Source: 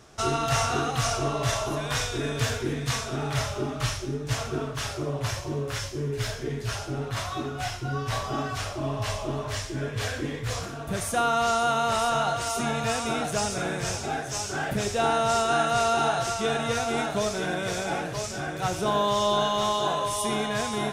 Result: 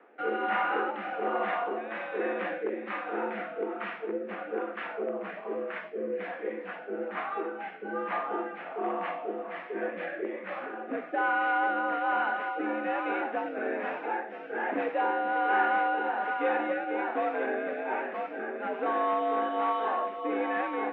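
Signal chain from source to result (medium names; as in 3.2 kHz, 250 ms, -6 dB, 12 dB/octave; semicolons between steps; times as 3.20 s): rotary cabinet horn 1.2 Hz; in parallel at -10.5 dB: integer overflow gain 21.5 dB; on the sum: mistuned SSB +76 Hz 210–2300 Hz; trim -1 dB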